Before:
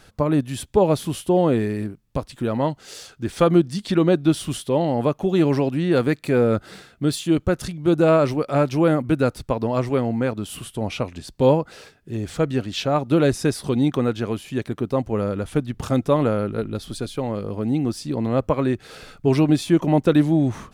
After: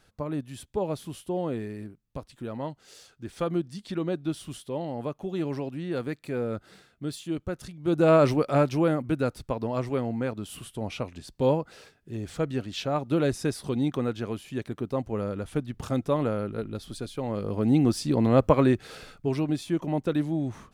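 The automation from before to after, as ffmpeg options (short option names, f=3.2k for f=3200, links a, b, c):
-af "volume=7.5dB,afade=t=in:st=7.76:d=0.52:silence=0.266073,afade=t=out:st=8.28:d=0.66:silence=0.473151,afade=t=in:st=17.17:d=0.61:silence=0.398107,afade=t=out:st=18.6:d=0.72:silence=0.281838"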